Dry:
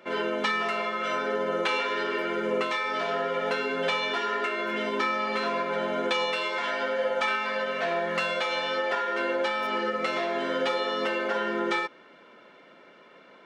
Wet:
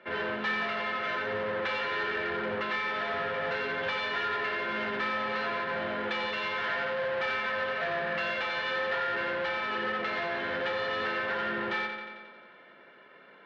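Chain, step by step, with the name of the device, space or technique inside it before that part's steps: analogue delay pedal into a guitar amplifier (analogue delay 89 ms, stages 4096, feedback 68%, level -8 dB; tube stage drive 29 dB, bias 0.7; speaker cabinet 87–4100 Hz, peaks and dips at 91 Hz +3 dB, 290 Hz -4 dB, 1700 Hz +8 dB)

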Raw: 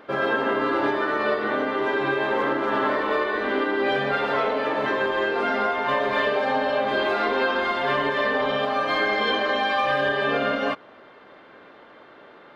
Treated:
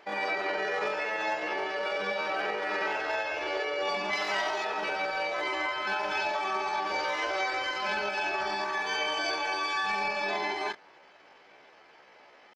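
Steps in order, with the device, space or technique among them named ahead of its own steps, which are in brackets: 4.14–4.66 high shelf 2400 Hz +8 dB; chipmunk voice (pitch shift +6.5 st); gain -7.5 dB

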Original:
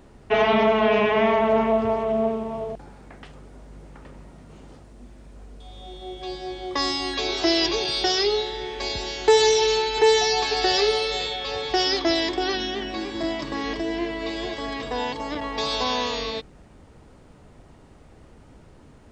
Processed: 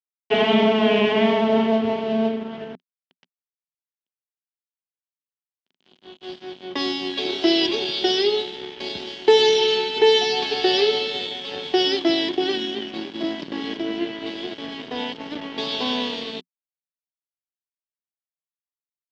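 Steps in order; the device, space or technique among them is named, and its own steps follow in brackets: blown loudspeaker (crossover distortion -33 dBFS; speaker cabinet 130–5100 Hz, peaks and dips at 180 Hz +8 dB, 250 Hz +9 dB, 370 Hz +7 dB, 1200 Hz -6 dB, 3100 Hz +10 dB)

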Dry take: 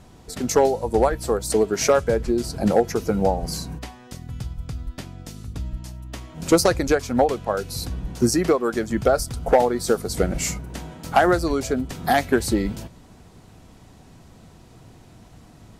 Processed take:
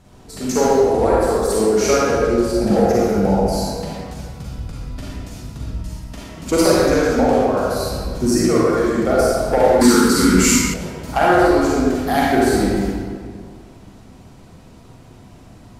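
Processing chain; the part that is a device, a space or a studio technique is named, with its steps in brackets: stairwell (reverb RT60 2.0 s, pre-delay 36 ms, DRR -7.5 dB); 9.81–10.74 EQ curve 140 Hz 0 dB, 260 Hz +14 dB, 690 Hz -20 dB, 1000 Hz +9 dB; gain -3.5 dB

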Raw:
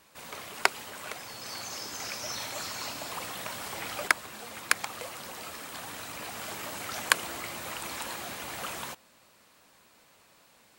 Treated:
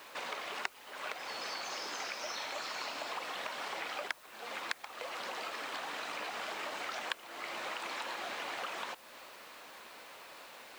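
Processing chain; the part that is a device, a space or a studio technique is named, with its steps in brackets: baby monitor (BPF 390–4100 Hz; compressor 6:1, threshold -49 dBFS, peak gain reduction 29 dB; white noise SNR 20 dB); gain +11 dB

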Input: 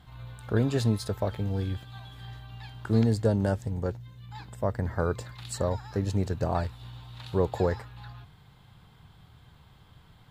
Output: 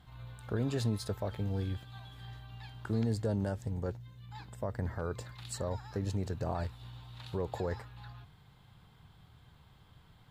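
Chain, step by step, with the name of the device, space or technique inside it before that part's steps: clipper into limiter (hard clip -13 dBFS, distortion -42 dB; limiter -19.5 dBFS, peak gain reduction 6.5 dB); gain -4.5 dB

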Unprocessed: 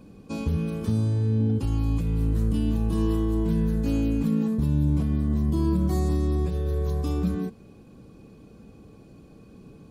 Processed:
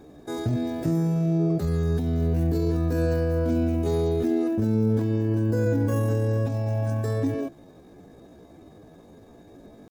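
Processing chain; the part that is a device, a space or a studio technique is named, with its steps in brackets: chipmunk voice (pitch shift +7 st)

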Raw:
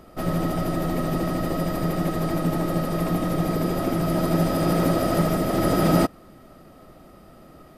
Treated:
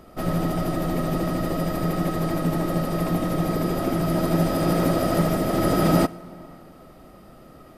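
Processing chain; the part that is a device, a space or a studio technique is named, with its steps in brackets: compressed reverb return (on a send at -6 dB: reverb RT60 1.3 s, pre-delay 59 ms + compressor 10:1, threshold -30 dBFS, peak gain reduction 15 dB)

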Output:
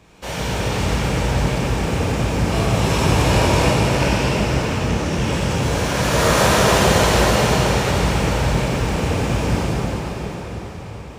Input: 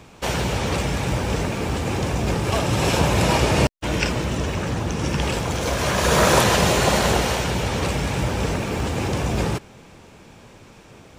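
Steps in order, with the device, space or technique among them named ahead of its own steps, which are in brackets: cathedral (reverb RT60 5.6 s, pre-delay 14 ms, DRR -9.5 dB); gain -7 dB

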